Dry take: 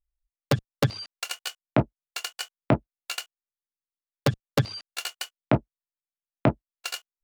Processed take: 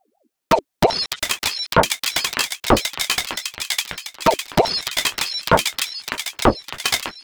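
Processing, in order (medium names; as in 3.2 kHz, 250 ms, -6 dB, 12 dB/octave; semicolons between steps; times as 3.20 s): feedback echo behind a high-pass 605 ms, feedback 57%, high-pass 2.2 kHz, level -3 dB; loudness maximiser +18 dB; ring modulator with a swept carrier 530 Hz, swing 50%, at 5.6 Hz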